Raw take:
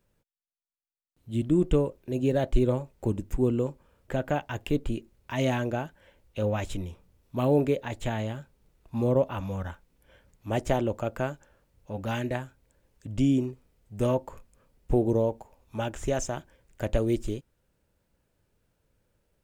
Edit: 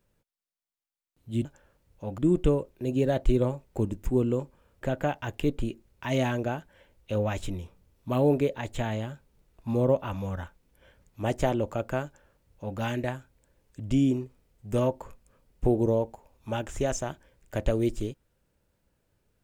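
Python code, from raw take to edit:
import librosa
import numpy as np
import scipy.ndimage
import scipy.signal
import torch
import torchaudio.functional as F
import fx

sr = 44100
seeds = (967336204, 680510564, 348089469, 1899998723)

y = fx.edit(x, sr, fx.duplicate(start_s=11.32, length_s=0.73, to_s=1.45), tone=tone)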